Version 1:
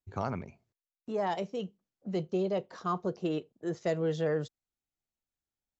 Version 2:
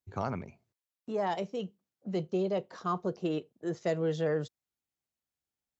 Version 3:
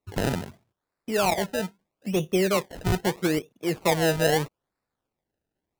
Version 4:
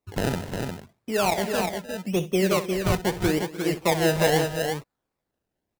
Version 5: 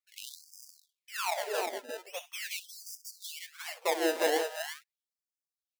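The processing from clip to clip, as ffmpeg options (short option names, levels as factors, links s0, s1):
-af "highpass=63"
-af "acrusher=samples=27:mix=1:aa=0.000001:lfo=1:lforange=27:lforate=0.78,volume=2.37"
-af "aecho=1:1:64|182|301|355:0.178|0.112|0.158|0.562"
-af "afftfilt=real='re*gte(b*sr/1024,240*pow(4800/240,0.5+0.5*sin(2*PI*0.42*pts/sr)))':imag='im*gte(b*sr/1024,240*pow(4800/240,0.5+0.5*sin(2*PI*0.42*pts/sr)))':win_size=1024:overlap=0.75,volume=0.473"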